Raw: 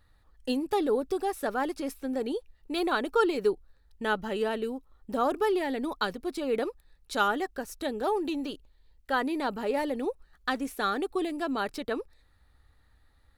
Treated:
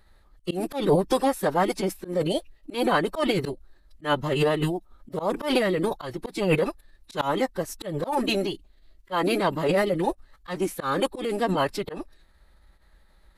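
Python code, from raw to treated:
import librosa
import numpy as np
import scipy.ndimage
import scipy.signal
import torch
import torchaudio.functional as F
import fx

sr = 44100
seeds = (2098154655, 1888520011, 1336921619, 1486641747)

y = fx.pitch_keep_formants(x, sr, semitones=-6.5)
y = fx.auto_swell(y, sr, attack_ms=151.0)
y = y * librosa.db_to_amplitude(7.5)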